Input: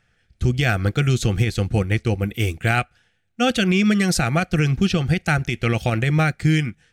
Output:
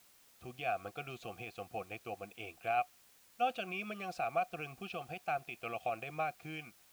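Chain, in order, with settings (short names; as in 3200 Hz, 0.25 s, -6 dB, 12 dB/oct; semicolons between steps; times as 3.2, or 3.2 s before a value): vowel filter a; requantised 10-bit, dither triangular; gain -4.5 dB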